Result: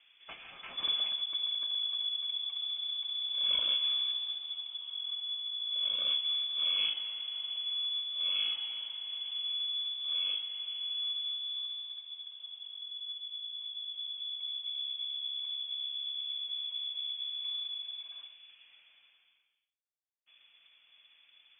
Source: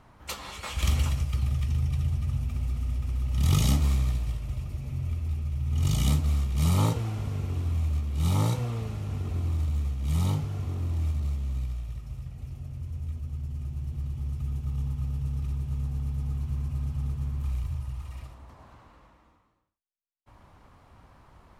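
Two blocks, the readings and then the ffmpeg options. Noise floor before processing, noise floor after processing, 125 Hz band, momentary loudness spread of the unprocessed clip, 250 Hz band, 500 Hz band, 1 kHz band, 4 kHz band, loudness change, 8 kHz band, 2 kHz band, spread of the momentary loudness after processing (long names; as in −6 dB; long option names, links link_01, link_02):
−60 dBFS, −68 dBFS, below −40 dB, 11 LU, below −30 dB, below −15 dB, below −10 dB, +15.0 dB, −3.0 dB, below −40 dB, −4.0 dB, 12 LU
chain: -af "lowpass=frequency=3000:width_type=q:width=0.5098,lowpass=frequency=3000:width_type=q:width=0.6013,lowpass=frequency=3000:width_type=q:width=0.9,lowpass=frequency=3000:width_type=q:width=2.563,afreqshift=-3500,volume=-8.5dB"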